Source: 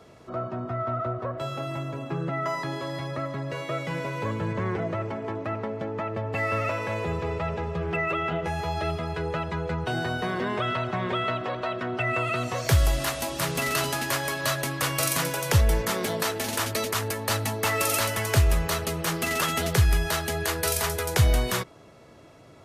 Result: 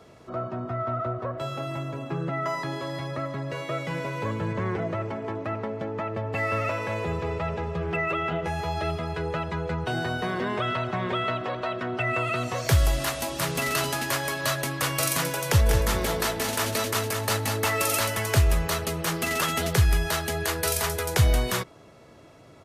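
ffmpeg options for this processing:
ffmpeg -i in.wav -filter_complex "[0:a]asplit=3[link_01][link_02][link_03];[link_01]afade=type=out:start_time=15.65:duration=0.02[link_04];[link_02]aecho=1:1:197|394|591|788|985:0.501|0.195|0.0762|0.0297|0.0116,afade=type=in:start_time=15.65:duration=0.02,afade=type=out:start_time=17.65:duration=0.02[link_05];[link_03]afade=type=in:start_time=17.65:duration=0.02[link_06];[link_04][link_05][link_06]amix=inputs=3:normalize=0" out.wav

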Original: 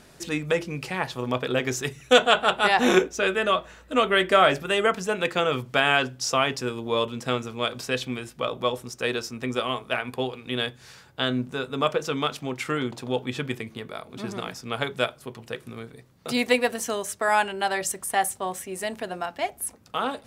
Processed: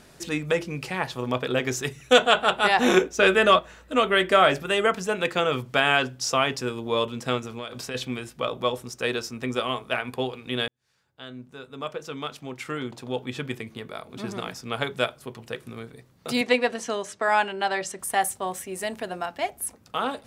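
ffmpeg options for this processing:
ffmpeg -i in.wav -filter_complex "[0:a]asettb=1/sr,asplit=3[link_01][link_02][link_03];[link_01]atrim=end=3.194[link_04];[link_02]atrim=start=3.19:end=3.59,asetpts=PTS-STARTPTS,afade=type=in:duration=0.004:curve=qsin,afade=type=out:start_time=0.396:duration=0.004:curve=qsin,acontrast=40[link_05];[link_03]atrim=start=3.586[link_06];[link_04][link_05]acrossfade=duration=0.004:curve1=hsin:curve2=qsin[link_07];[link_07][link_06]acrossfade=duration=0.004:curve1=qsin:curve2=hsin,asplit=3[link_08][link_09][link_10];[link_08]afade=type=out:start_time=7.39:duration=0.02[link_11];[link_09]acompressor=threshold=-29dB:ratio=10:attack=3.2:release=140:knee=1:detection=peak,afade=type=in:start_time=7.39:duration=0.02,afade=type=out:start_time=7.94:duration=0.02[link_12];[link_10]afade=type=in:start_time=7.94:duration=0.02[link_13];[link_11][link_12][link_13]amix=inputs=3:normalize=0,asettb=1/sr,asplit=3[link_14][link_15][link_16];[link_14]atrim=end=16.414[link_17];[link_15]atrim=start=16.41:end=17.99,asetpts=PTS-STARTPTS,afade=type=in:duration=0.004:curve=qsin,afade=type=out:start_time=1.576:duration=0.004:curve=qsin,highpass=140,lowpass=5700[link_18];[link_16]atrim=start=17.986[link_19];[link_17][link_18]acrossfade=duration=0.004:curve1=hsin:curve2=qsin[link_20];[link_20][link_19]acrossfade=duration=0.004:curve1=qsin:curve2=hsin,asplit=2[link_21][link_22];[link_21]atrim=end=10.68,asetpts=PTS-STARTPTS,afade=type=out:start_time=10.676:duration=0.004:curve=hsin[link_23];[link_22]atrim=start=10.68,asetpts=PTS-STARTPTS,afade=type=in:duration=3.47[link_24];[link_23][link_24]concat=n=2:v=0:a=1" out.wav

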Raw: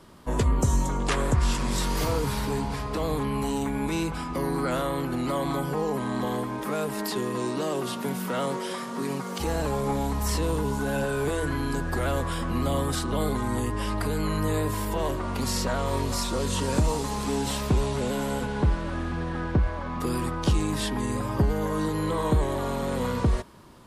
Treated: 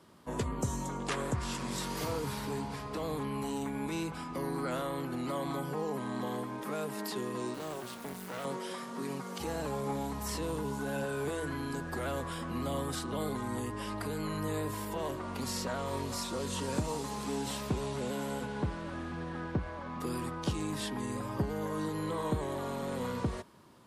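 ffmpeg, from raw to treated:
ffmpeg -i in.wav -filter_complex "[0:a]asettb=1/sr,asplit=3[link_01][link_02][link_03];[link_01]atrim=end=7.544[link_04];[link_02]atrim=start=7.54:end=8.45,asetpts=PTS-STARTPTS,afade=type=in:duration=0.004:curve=qsin,afade=type=out:start_time=0.906:duration=0.004:curve=qsin,acrusher=bits=4:dc=4:mix=0:aa=0.000001[link_05];[link_03]atrim=start=8.446[link_06];[link_04][link_05]acrossfade=duration=0.004:curve1=hsin:curve2=qsin[link_07];[link_07][link_06]acrossfade=duration=0.004:curve1=qsin:curve2=hsin,highpass=100,volume=-7.5dB" out.wav

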